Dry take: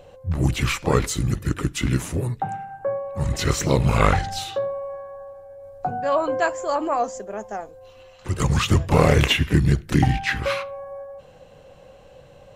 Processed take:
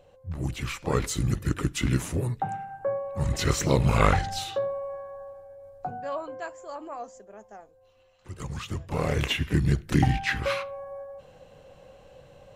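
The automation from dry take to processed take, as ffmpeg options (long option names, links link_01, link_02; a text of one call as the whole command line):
ffmpeg -i in.wav -af "volume=8.5dB,afade=type=in:start_time=0.73:duration=0.51:silence=0.446684,afade=type=out:start_time=5.28:duration=1.03:silence=0.251189,afade=type=in:start_time=8.82:duration=1.1:silence=0.266073" out.wav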